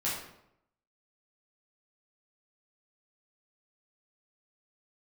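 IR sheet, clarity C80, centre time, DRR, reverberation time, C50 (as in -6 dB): 6.0 dB, 52 ms, -8.5 dB, 0.80 s, 2.0 dB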